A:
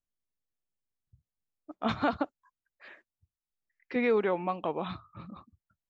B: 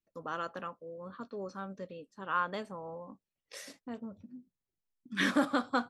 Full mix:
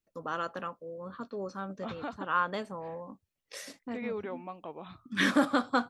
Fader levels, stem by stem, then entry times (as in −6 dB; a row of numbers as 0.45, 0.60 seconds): −10.5, +3.0 decibels; 0.00, 0.00 seconds